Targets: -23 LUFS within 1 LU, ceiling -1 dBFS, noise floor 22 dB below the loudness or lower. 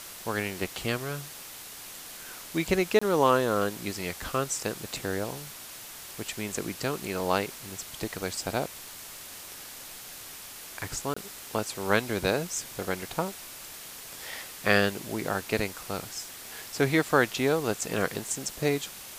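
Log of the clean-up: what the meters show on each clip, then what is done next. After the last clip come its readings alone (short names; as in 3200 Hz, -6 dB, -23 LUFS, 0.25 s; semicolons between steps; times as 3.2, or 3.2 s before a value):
dropouts 2; longest dropout 25 ms; noise floor -44 dBFS; noise floor target -52 dBFS; loudness -30.0 LUFS; peak -5.0 dBFS; loudness target -23.0 LUFS
-> interpolate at 2.99/11.14, 25 ms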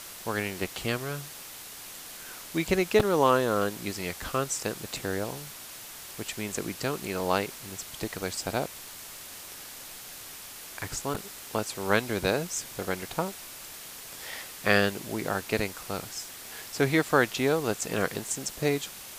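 dropouts 0; noise floor -44 dBFS; noise floor target -52 dBFS
-> noise print and reduce 8 dB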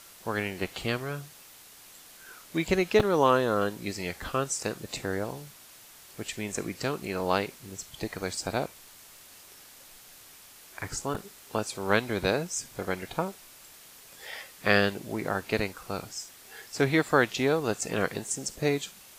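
noise floor -52 dBFS; loudness -29.5 LUFS; peak -5.0 dBFS; loudness target -23.0 LUFS
-> gain +6.5 dB; limiter -1 dBFS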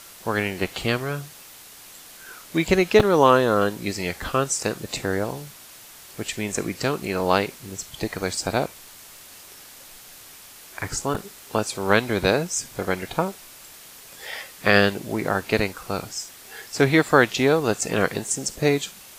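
loudness -23.0 LUFS; peak -1.0 dBFS; noise floor -45 dBFS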